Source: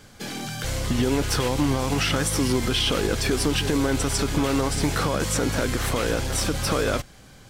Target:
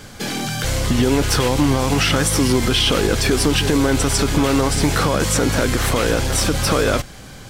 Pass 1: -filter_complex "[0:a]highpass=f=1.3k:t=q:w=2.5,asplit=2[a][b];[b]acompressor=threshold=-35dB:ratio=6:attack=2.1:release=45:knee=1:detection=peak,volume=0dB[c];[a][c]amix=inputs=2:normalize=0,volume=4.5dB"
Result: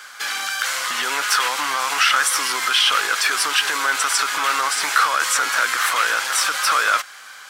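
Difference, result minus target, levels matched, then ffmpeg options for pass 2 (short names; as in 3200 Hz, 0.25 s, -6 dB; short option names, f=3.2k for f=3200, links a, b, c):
1000 Hz band +5.0 dB
-filter_complex "[0:a]asplit=2[a][b];[b]acompressor=threshold=-35dB:ratio=6:attack=2.1:release=45:knee=1:detection=peak,volume=0dB[c];[a][c]amix=inputs=2:normalize=0,volume=4.5dB"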